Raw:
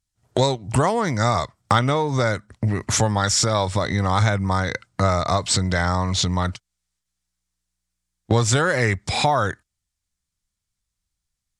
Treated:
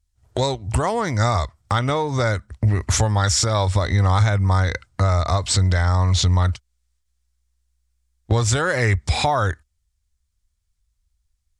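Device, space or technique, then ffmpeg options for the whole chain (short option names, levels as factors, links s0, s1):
car stereo with a boomy subwoofer: -af "lowshelf=f=100:t=q:w=1.5:g=12.5,alimiter=limit=0.355:level=0:latency=1:release=174"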